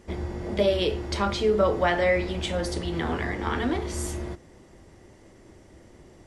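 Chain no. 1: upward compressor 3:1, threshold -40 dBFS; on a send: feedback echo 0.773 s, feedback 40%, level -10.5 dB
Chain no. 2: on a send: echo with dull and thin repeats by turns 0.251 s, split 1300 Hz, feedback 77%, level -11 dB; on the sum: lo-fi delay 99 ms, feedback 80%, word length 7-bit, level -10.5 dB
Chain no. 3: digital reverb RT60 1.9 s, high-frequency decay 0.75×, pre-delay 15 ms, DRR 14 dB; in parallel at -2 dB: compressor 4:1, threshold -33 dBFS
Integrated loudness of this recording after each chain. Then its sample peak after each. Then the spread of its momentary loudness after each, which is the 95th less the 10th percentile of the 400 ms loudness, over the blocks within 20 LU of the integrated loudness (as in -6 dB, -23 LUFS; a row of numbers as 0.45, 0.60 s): -26.0, -25.0, -24.0 LUFS; -9.0, -9.5, -7.0 dBFS; 21, 19, 10 LU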